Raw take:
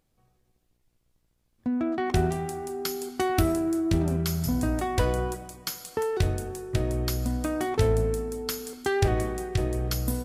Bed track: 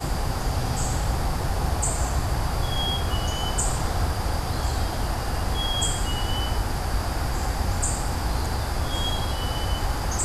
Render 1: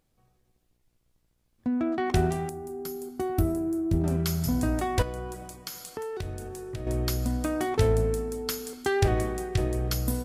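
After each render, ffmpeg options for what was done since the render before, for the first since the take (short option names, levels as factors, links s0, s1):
-filter_complex "[0:a]asettb=1/sr,asplit=3[s0][s1][s2];[s0]atrim=end=2.494[s3];[s1]atrim=start=2.49:end=4.04,asetpts=PTS-STARTPTS,afade=t=in:d=0.004:c=qsin,afade=t=out:st=1.546:d=0.004:c=qsin,equalizer=f=3000:w=0.31:g=-15[s4];[s2]atrim=start=4.036[s5];[s3][s4]acrossfade=d=0.004:c1=hsin:c2=qsin[s6];[s6][s5]acrossfade=d=0.004:c1=qsin:c2=hsin,asettb=1/sr,asplit=3[s7][s8][s9];[s7]atrim=end=5.024[s10];[s8]atrim=start=5.02:end=6.87,asetpts=PTS-STARTPTS,afade=t=in:d=0.004:c=qsin,afade=t=out:st=1.846:d=0.004:c=qsin,acompressor=threshold=0.0178:ratio=2.5:attack=3.2:release=140:knee=1:detection=peak[s11];[s9]atrim=start=6.866[s12];[s10][s11]acrossfade=d=0.004:c1=hsin:c2=qsin[s13];[s13][s12]acrossfade=d=0.004:c1=qsin:c2=hsin"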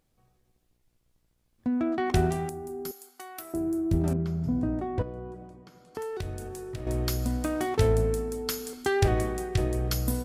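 -filter_complex "[0:a]asettb=1/sr,asplit=3[s0][s1][s2];[s0]atrim=end=2.914[s3];[s1]atrim=start=2.91:end=3.54,asetpts=PTS-STARTPTS,afade=t=in:d=0.004:c=qsin,afade=t=out:st=0.626:d=0.004:c=qsin,highpass=1200[s4];[s2]atrim=start=3.536[s5];[s3][s4]acrossfade=d=0.004:c1=hsin:c2=qsin[s6];[s6][s5]acrossfade=d=0.004:c1=qsin:c2=hsin,asettb=1/sr,asplit=3[s7][s8][s9];[s7]atrim=end=4.134[s10];[s8]atrim=start=4.13:end=5.95,asetpts=PTS-STARTPTS,afade=t=in:d=0.004:c=qsin,afade=t=out:st=1.816:d=0.004:c=qsin,bandpass=f=220:t=q:w=0.56[s11];[s9]atrim=start=5.946[s12];[s10][s11]acrossfade=d=0.004:c1=hsin:c2=qsin[s13];[s13][s12]acrossfade=d=0.004:c1=qsin:c2=hsin,asettb=1/sr,asplit=3[s14][s15][s16];[s14]atrim=end=6.734[s17];[s15]atrim=start=6.73:end=7.84,asetpts=PTS-STARTPTS,afade=t=in:d=0.004:c=qsin,afade=t=out:st=1.106:d=0.004:c=qsin,aeval=exprs='sgn(val(0))*max(abs(val(0))-0.00376,0)':c=same[s18];[s16]atrim=start=7.836[s19];[s17][s18]acrossfade=d=0.004:c1=hsin:c2=qsin[s20];[s20][s19]acrossfade=d=0.004:c1=qsin:c2=hsin"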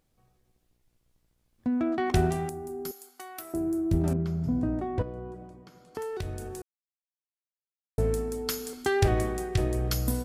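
-filter_complex "[0:a]asplit=3[s0][s1][s2];[s0]atrim=end=6.62,asetpts=PTS-STARTPTS,afade=t=out:st=6.616:d=0.004:c=hsin[s3];[s1]atrim=start=6.62:end=7.98,asetpts=PTS-STARTPTS,volume=0[s4];[s2]atrim=start=7.98,asetpts=PTS-STARTPTS,afade=t=in:d=0.004:c=hsin[s5];[s3][s4][s5]concat=n=3:v=0:a=1"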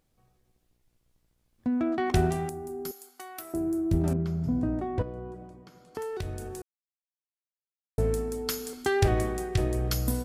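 -af anull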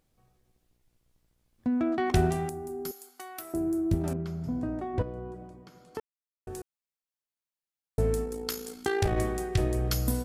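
-filter_complex "[0:a]asettb=1/sr,asplit=3[s0][s1][s2];[s0]atrim=end=3.944[s3];[s1]atrim=start=3.94:end=4.94,asetpts=PTS-STARTPTS,afade=t=in:d=0.004:c=qsin,afade=t=out:st=0.996:d=0.004:c=qsin,lowshelf=f=330:g=-6.5[s4];[s2]atrim=start=4.936[s5];[s3][s4]acrossfade=d=0.004:c1=hsin:c2=qsin[s6];[s6][s5]acrossfade=d=0.004:c1=qsin:c2=hsin,asplit=3[s7][s8][s9];[s7]afade=t=out:st=8.24:d=0.02[s10];[s8]tremolo=f=56:d=0.621,afade=t=in:st=8.24:d=0.02,afade=t=out:st=9.16:d=0.02[s11];[s9]afade=t=in:st=9.16:d=0.02[s12];[s10][s11][s12]amix=inputs=3:normalize=0,asplit=3[s13][s14][s15];[s13]atrim=end=6,asetpts=PTS-STARTPTS,afade=t=out:st=5.996:d=0.004:c=hsin[s16];[s14]atrim=start=6:end=6.47,asetpts=PTS-STARTPTS,volume=0[s17];[s15]atrim=start=6.47,asetpts=PTS-STARTPTS,afade=t=in:d=0.004:c=hsin[s18];[s16][s17][s18]concat=n=3:v=0:a=1"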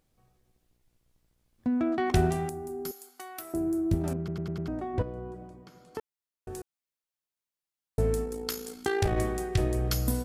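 -filter_complex "[0:a]asplit=6[s0][s1][s2][s3][s4][s5];[s0]atrim=end=4.282[s6];[s1]atrim=start=4.178:end=4.282[s7];[s2]atrim=start=4.178:end=4.282[s8];[s3]atrim=start=4.178:end=4.282[s9];[s4]atrim=start=4.178:end=4.282[s10];[s5]atrim=start=4.678[s11];[s6][s7]acrossfade=d=0.004:c1=hsin:c2=hsin[s12];[s12][s8]acrossfade=d=0.004:c1=hsin:c2=hsin[s13];[s13][s9]acrossfade=d=0.004:c1=hsin:c2=hsin[s14];[s14][s10]acrossfade=d=0.004:c1=hsin:c2=hsin[s15];[s15][s11]acrossfade=d=0.004:c1=hsin:c2=hsin"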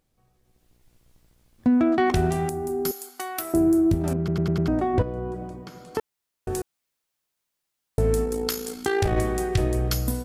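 -af "dynaudnorm=f=110:g=11:m=3.55,alimiter=limit=0.282:level=0:latency=1:release=499"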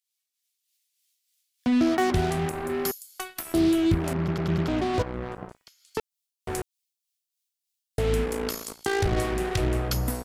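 -filter_complex "[0:a]acrossover=split=440[s0][s1];[s0]aeval=exprs='val(0)*(1-0.5/2+0.5/2*cos(2*PI*3.3*n/s))':c=same[s2];[s1]aeval=exprs='val(0)*(1-0.5/2-0.5/2*cos(2*PI*3.3*n/s))':c=same[s3];[s2][s3]amix=inputs=2:normalize=0,acrossover=split=2600[s4][s5];[s4]acrusher=bits=4:mix=0:aa=0.5[s6];[s6][s5]amix=inputs=2:normalize=0"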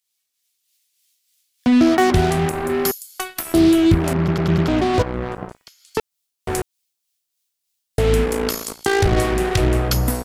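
-af "volume=2.51"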